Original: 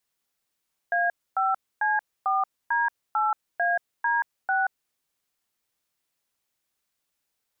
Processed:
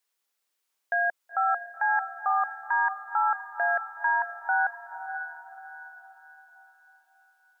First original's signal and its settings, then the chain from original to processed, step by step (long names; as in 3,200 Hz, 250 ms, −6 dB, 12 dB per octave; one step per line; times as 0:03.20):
touch tones "A5C4D8AD6", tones 180 ms, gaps 266 ms, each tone −23.5 dBFS
high-pass filter 400 Hz 12 dB per octave
parametric band 680 Hz −2.5 dB 0.24 octaves
on a send: feedback delay with all-pass diffusion 504 ms, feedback 43%, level −9 dB